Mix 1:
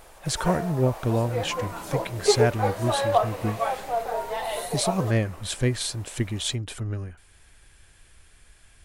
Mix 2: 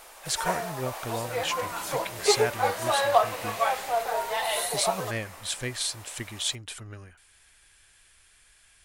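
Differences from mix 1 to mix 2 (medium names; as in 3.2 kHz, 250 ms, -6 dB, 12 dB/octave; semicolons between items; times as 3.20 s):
speech -6.5 dB; master: add tilt shelf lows -7 dB, about 700 Hz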